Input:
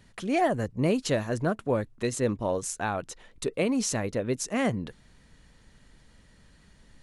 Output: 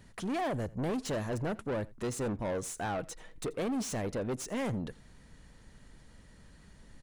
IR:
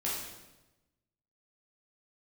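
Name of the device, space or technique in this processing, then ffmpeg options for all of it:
saturation between pre-emphasis and de-emphasis: -filter_complex "[0:a]asettb=1/sr,asplit=3[link_01][link_02][link_03];[link_01]atrim=end=2.854[link_04];[link_02]atrim=start=2.85:end=3.53,asetpts=PTS-STARTPTS,afade=type=in:duration=0.004:curve=qsin,afade=type=out:start_time=0.676:duration=0.004:curve=qsin,aecho=1:1:6.3:0.39,atrim=end_sample=29988[link_05];[link_03]atrim=start=3.526[link_06];[link_04][link_05]acrossfade=duration=0.004:curve1=hsin:curve2=qsin[link_07];[link_07][link_06]acrossfade=duration=0.004:curve1=qsin:curve2=hsin,equalizer=frequency=3300:width=0.69:gain=-4,highshelf=frequency=3700:gain=9.5,asoftclip=type=tanh:threshold=-31.5dB,highshelf=frequency=3700:gain=-9.5,aecho=1:1:85:0.075,volume=1.5dB"

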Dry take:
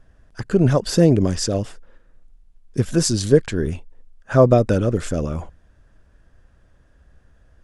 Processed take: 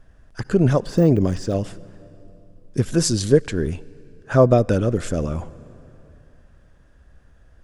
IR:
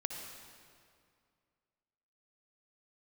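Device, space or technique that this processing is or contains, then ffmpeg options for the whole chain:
ducked reverb: -filter_complex "[0:a]asettb=1/sr,asplit=3[link_01][link_02][link_03];[link_01]atrim=end=0.834[link_04];[link_02]atrim=start=0.83:end=1.58,asetpts=PTS-STARTPTS,afade=type=in:duration=0.004:curve=qsin,afade=type=out:start_time=0.746:duration=0.004:curve=qsin,deesser=0.95[link_05];[link_03]atrim=start=1.576[link_06];[link_04][link_05]acrossfade=duration=0.004:curve1=hsin:curve2=qsin[link_07];[link_07][link_06]acrossfade=duration=0.004:curve1=qsin:curve2=hsin,asplit=3[link_08][link_09][link_10];[1:a]atrim=start_sample=2205[link_11];[link_09][link_11]afir=irnorm=-1:irlink=0[link_12];[link_10]apad=whole_len=336868[link_13];[link_12][link_13]sidechaincompress=threshold=-22dB:ratio=8:attack=6.3:release=1260,volume=-7dB[link_14];[link_08][link_14]amix=inputs=2:normalize=0,volume=-1.5dB"

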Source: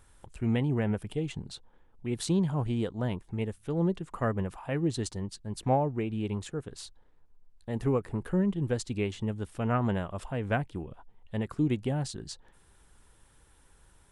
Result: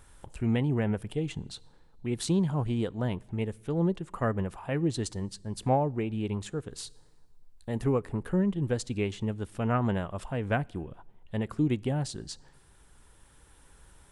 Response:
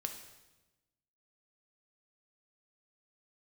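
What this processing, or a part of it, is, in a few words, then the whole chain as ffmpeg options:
ducked reverb: -filter_complex "[0:a]asplit=3[link_01][link_02][link_03];[1:a]atrim=start_sample=2205[link_04];[link_02][link_04]afir=irnorm=-1:irlink=0[link_05];[link_03]apad=whole_len=622434[link_06];[link_05][link_06]sidechaincompress=threshold=-43dB:ratio=5:attack=16:release=1360,volume=-2.5dB[link_07];[link_01][link_07]amix=inputs=2:normalize=0,asettb=1/sr,asplit=3[link_08][link_09][link_10];[link_08]atrim=end=6.714[link_11];[link_09]atrim=start=6.71:end=7.84,asetpts=PTS-STARTPTS,afade=type=in:duration=0.004:curve=qsin,afade=type=out:start_time=1.126:duration=0.004:curve=qsin,highshelf=frequency=6400:gain=5[link_12];[link_10]atrim=start=7.836[link_13];[link_11][link_12]acrossfade=duration=0.004:curve1=hsin:curve2=qsin[link_14];[link_14][link_13]acrossfade=duration=0.004:curve1=qsin:curve2=hsin"

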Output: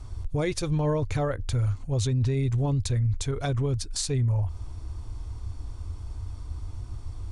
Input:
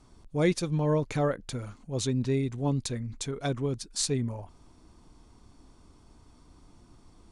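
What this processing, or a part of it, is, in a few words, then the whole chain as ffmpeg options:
car stereo with a boomy subwoofer: -af "lowshelf=frequency=130:width_type=q:width=3:gain=12,alimiter=level_in=2dB:limit=-24dB:level=0:latency=1:release=184,volume=-2dB,volume=7.5dB"

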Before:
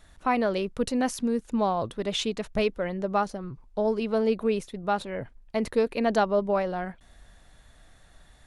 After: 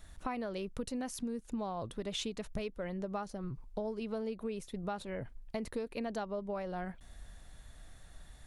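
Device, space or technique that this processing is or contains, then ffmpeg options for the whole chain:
ASMR close-microphone chain: -af "lowshelf=frequency=170:gain=6.5,acompressor=threshold=-32dB:ratio=6,highshelf=frequency=6700:gain=7,volume=-3.5dB"

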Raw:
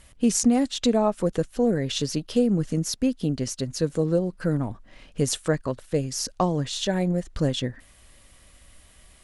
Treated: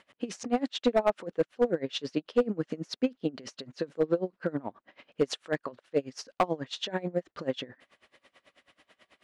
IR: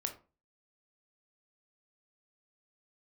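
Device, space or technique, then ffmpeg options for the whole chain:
helicopter radio: -af "highpass=330,lowpass=3000,aeval=exprs='val(0)*pow(10,-24*(0.5-0.5*cos(2*PI*9.2*n/s))/20)':channel_layout=same,asoftclip=type=hard:threshold=-20dB,volume=4dB"

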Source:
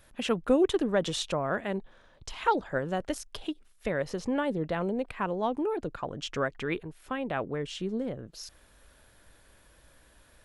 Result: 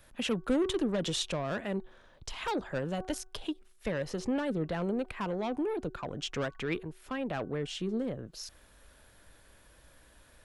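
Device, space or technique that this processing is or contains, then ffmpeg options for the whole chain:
one-band saturation: -filter_complex "[0:a]acrossover=split=300|2500[link_01][link_02][link_03];[link_02]asoftclip=type=tanh:threshold=-31dB[link_04];[link_01][link_04][link_03]amix=inputs=3:normalize=0,bandreject=frequency=373.4:width_type=h:width=4,bandreject=frequency=746.8:width_type=h:width=4,bandreject=frequency=1120.2:width_type=h:width=4,bandreject=frequency=1493.6:width_type=h:width=4"

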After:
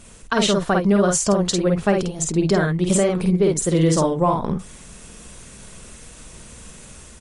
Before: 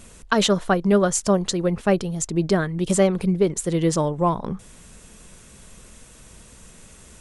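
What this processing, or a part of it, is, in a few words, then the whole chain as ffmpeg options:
low-bitrate web radio: -af "aecho=1:1:50|63:0.668|0.133,dynaudnorm=framelen=260:gausssize=3:maxgain=4dB,alimiter=limit=-8dB:level=0:latency=1:release=96" -ar 32000 -c:a libmp3lame -b:a 48k

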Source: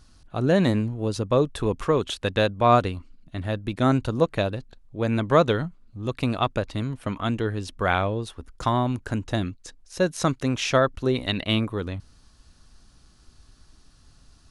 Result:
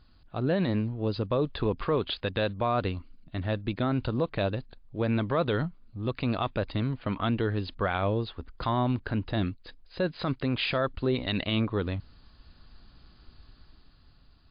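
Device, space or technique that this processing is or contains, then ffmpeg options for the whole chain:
low-bitrate web radio: -af "dynaudnorm=framelen=210:gausssize=11:maxgain=6.5dB,alimiter=limit=-12.5dB:level=0:latency=1:release=48,volume=-4.5dB" -ar 11025 -c:a libmp3lame -b:a 48k

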